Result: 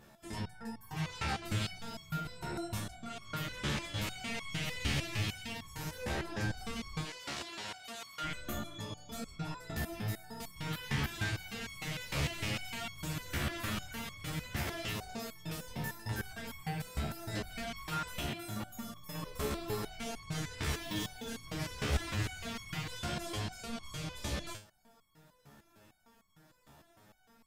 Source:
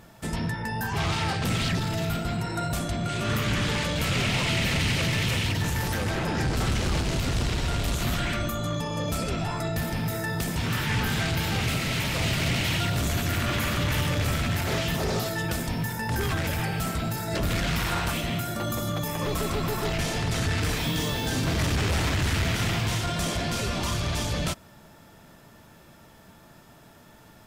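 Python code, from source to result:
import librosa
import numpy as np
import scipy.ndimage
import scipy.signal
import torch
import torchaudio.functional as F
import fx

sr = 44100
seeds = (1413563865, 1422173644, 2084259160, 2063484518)

y = fx.weighting(x, sr, curve='A', at=(7.05, 8.24))
y = fx.resonator_held(y, sr, hz=6.6, low_hz=71.0, high_hz=1100.0)
y = y * librosa.db_to_amplitude(1.0)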